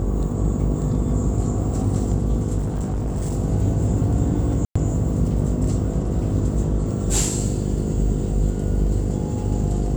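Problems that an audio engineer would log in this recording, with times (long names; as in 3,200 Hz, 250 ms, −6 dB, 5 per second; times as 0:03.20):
mains buzz 50 Hz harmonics 10 −25 dBFS
0:02.58–0:03.34: clipping −20 dBFS
0:04.65–0:04.75: drop-out 105 ms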